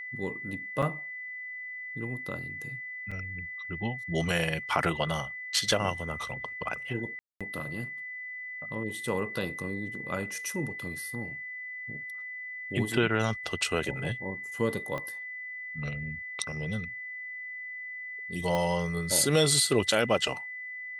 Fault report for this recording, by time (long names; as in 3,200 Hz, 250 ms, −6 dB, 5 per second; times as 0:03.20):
whistle 2,000 Hz −37 dBFS
0:00.82–0:00.83: drop-out 6.1 ms
0:03.11–0:03.12: drop-out 5.6 ms
0:07.19–0:07.41: drop-out 216 ms
0:14.98: click −22 dBFS
0:18.55: click −17 dBFS